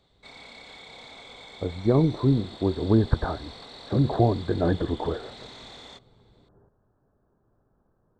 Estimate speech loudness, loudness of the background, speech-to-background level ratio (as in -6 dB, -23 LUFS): -25.0 LUFS, -43.5 LUFS, 18.5 dB